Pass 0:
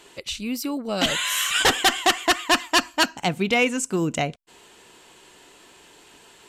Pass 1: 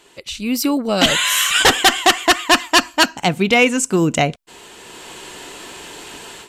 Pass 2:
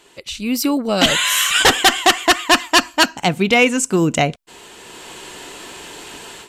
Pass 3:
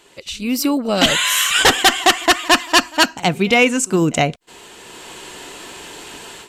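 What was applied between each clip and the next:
automatic gain control gain up to 16.5 dB; level −1 dB
no processing that can be heard
echo ahead of the sound 63 ms −23 dB

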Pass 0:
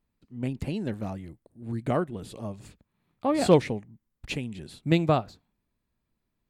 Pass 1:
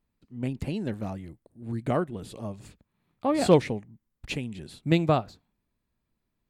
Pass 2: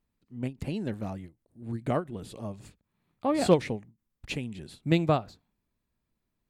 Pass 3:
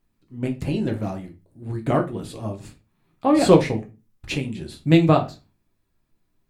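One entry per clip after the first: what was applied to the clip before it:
no processing that can be heard
every ending faded ahead of time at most 280 dB per second; level −1.5 dB
convolution reverb RT60 0.25 s, pre-delay 6 ms, DRR 2 dB; level +5.5 dB

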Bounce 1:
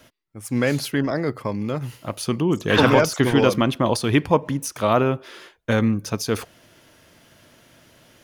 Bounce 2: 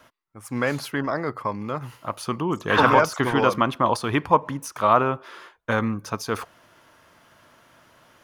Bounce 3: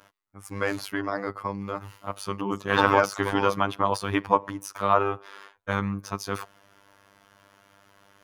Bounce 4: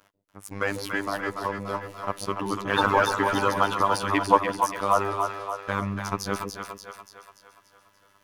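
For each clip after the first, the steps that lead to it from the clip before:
parametric band 1,100 Hz +12.5 dB 1.3 octaves; level −6.5 dB
phases set to zero 99.3 Hz; level −1 dB
leveller curve on the samples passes 1; harmonic and percussive parts rebalanced harmonic −7 dB; echo with a time of its own for lows and highs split 510 Hz, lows 139 ms, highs 289 ms, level −5 dB

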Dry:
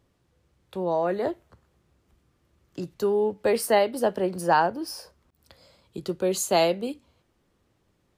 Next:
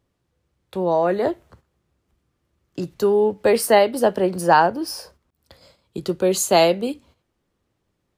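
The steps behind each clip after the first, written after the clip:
noise gate −56 dBFS, range −10 dB
level +6 dB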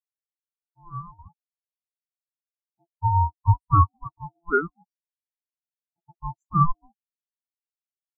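ring modulation 510 Hz
every bin expanded away from the loudest bin 4 to 1
level −2.5 dB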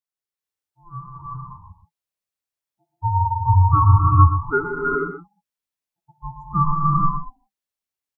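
single-tap delay 126 ms −10 dB
reverb whose tail is shaped and stops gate 470 ms rising, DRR −4 dB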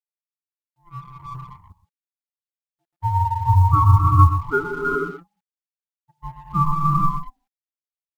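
mu-law and A-law mismatch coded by A

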